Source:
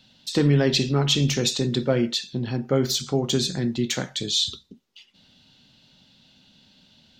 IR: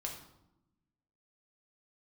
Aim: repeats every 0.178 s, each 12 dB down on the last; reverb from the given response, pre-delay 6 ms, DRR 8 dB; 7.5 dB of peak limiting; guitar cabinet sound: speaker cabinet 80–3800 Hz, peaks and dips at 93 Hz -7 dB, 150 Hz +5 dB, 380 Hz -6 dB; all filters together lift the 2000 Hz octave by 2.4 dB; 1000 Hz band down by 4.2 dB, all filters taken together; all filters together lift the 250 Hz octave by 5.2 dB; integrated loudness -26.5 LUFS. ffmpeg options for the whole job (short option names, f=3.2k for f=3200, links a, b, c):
-filter_complex "[0:a]equalizer=f=250:t=o:g=7,equalizer=f=1k:t=o:g=-8.5,equalizer=f=2k:t=o:g=5.5,alimiter=limit=-13.5dB:level=0:latency=1,aecho=1:1:178|356|534:0.251|0.0628|0.0157,asplit=2[a][b];[1:a]atrim=start_sample=2205,adelay=6[c];[b][c]afir=irnorm=-1:irlink=0,volume=-7.5dB[d];[a][d]amix=inputs=2:normalize=0,highpass=80,equalizer=f=93:t=q:w=4:g=-7,equalizer=f=150:t=q:w=4:g=5,equalizer=f=380:t=q:w=4:g=-6,lowpass=f=3.8k:w=0.5412,lowpass=f=3.8k:w=1.3066,volume=-2.5dB"